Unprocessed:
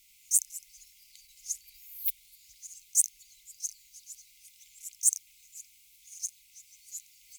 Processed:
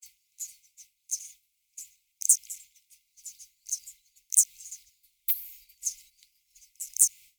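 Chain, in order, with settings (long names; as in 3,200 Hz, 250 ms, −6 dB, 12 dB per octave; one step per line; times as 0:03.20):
played backwards from end to start
downward expander −47 dBFS
level +3.5 dB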